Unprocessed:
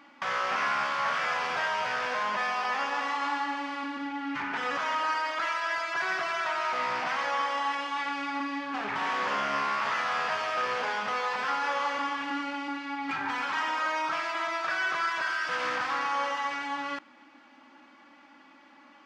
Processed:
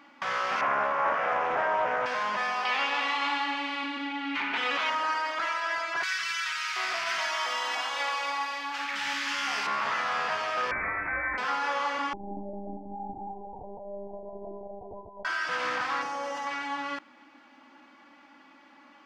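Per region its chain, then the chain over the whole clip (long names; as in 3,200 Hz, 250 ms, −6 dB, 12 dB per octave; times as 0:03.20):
0:00.61–0:02.06: moving average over 11 samples + parametric band 580 Hz +8.5 dB 1.5 octaves + highs frequency-modulated by the lows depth 0.19 ms
0:02.65–0:04.90: high-pass filter 200 Hz 24 dB per octave + flat-topped bell 3,000 Hz +8.5 dB 1.2 octaves
0:06.03–0:09.67: spectral tilt +3.5 dB per octave + three-band delay without the direct sound highs, lows, mids 110/730 ms, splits 230/1,300 Hz
0:10.71–0:11.38: Bessel high-pass filter 330 Hz + voice inversion scrambler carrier 2,800 Hz
0:12.13–0:15.25: Butterworth low-pass 850 Hz 96 dB per octave + one-pitch LPC vocoder at 8 kHz 200 Hz
0:16.02–0:16.47: flat-topped bell 2,000 Hz −8.5 dB 2.5 octaves + envelope flattener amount 70%
whole clip: no processing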